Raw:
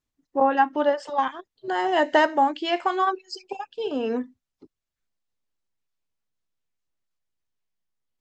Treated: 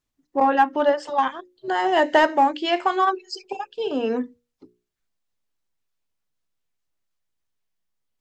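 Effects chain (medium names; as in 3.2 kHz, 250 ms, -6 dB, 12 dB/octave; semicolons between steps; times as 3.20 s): hum notches 60/120/180/240/300/360/420/480/540 Hz; in parallel at -8 dB: hard clipper -16.5 dBFS, distortion -13 dB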